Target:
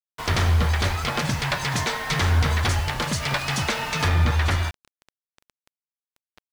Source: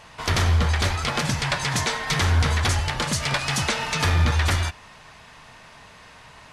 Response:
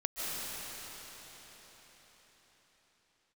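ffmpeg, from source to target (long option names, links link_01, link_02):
-af "acrusher=bits=5:mix=0:aa=0.000001,asetnsamples=nb_out_samples=441:pad=0,asendcmd='4.08 highshelf g -11.5',highshelf=frequency=6000:gain=-6.5"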